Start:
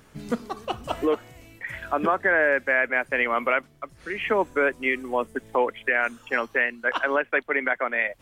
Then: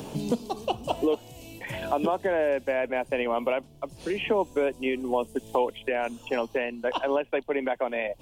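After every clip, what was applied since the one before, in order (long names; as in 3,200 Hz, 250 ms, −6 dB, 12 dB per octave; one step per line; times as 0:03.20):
flat-topped bell 1,600 Hz −15.5 dB 1.1 octaves
multiband upward and downward compressor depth 70%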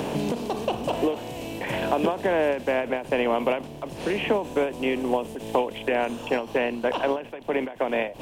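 compressor on every frequency bin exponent 0.6
every ending faded ahead of time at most 140 dB per second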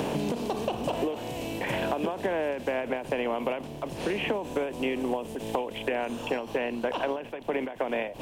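downward compressor, threshold −25 dBFS, peak gain reduction 8 dB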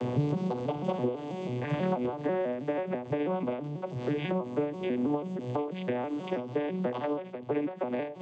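vocoder with an arpeggio as carrier minor triad, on B2, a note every 163 ms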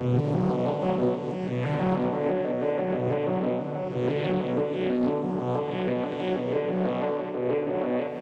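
peak hold with a rise ahead of every peak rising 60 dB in 1.07 s
loudspeakers that aren't time-aligned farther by 11 metres −3 dB, 46 metres −9 dB, 83 metres −6 dB
highs frequency-modulated by the lows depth 0.65 ms
level −1 dB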